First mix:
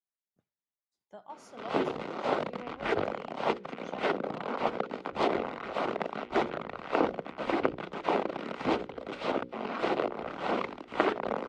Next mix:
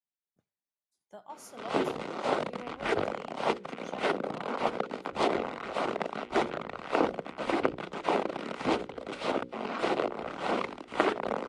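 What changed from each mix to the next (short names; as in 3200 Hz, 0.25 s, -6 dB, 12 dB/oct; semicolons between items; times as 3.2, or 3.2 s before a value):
master: remove air absorption 93 m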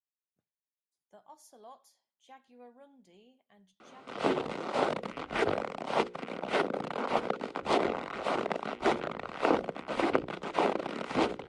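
speech -8.0 dB; background: entry +2.50 s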